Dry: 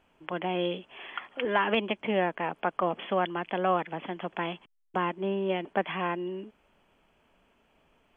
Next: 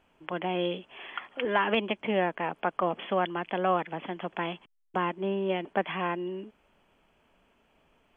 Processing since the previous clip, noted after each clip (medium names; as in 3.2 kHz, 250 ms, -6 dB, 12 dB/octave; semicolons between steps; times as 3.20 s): no audible change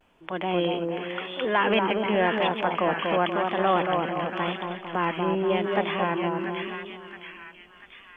transient shaper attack -3 dB, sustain +3 dB; two-band feedback delay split 1.4 kHz, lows 233 ms, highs 681 ms, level -3.5 dB; vibrato 0.91 Hz 68 cents; trim +3.5 dB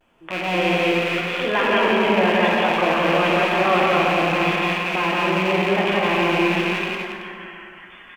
rattle on loud lows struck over -42 dBFS, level -17 dBFS; loudspeakers at several distances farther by 60 m -2 dB, 93 m -7 dB; plate-style reverb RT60 1.9 s, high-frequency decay 0.55×, DRR 0 dB